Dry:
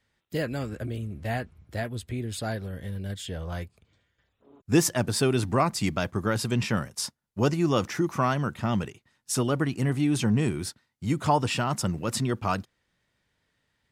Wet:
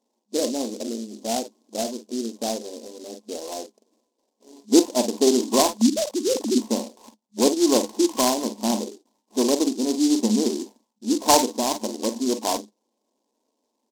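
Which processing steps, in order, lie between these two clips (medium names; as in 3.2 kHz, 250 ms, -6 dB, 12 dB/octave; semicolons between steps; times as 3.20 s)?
5.77–6.58 s: formants replaced by sine waves; FFT band-pass 210–1100 Hz; on a send: early reflections 43 ms -10 dB, 53 ms -13.5 dB; on the sum: delay time shaken by noise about 5.4 kHz, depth 0.12 ms; trim +6.5 dB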